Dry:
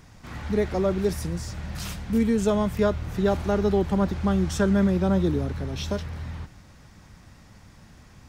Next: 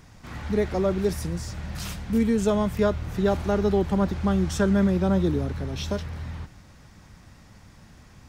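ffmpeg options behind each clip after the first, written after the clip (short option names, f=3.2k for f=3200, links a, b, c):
-af anull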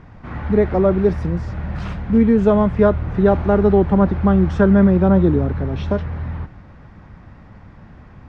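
-af "lowpass=1.7k,volume=8.5dB"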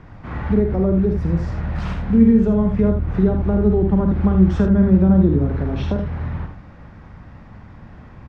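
-filter_complex "[0:a]acrossover=split=320[a][b];[b]acompressor=threshold=-27dB:ratio=10[c];[a][c]amix=inputs=2:normalize=0,asplit=2[d][e];[e]aecho=0:1:48|79:0.422|0.447[f];[d][f]amix=inputs=2:normalize=0"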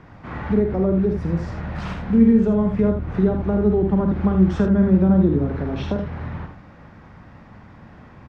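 -af "lowshelf=f=85:g=-11.5"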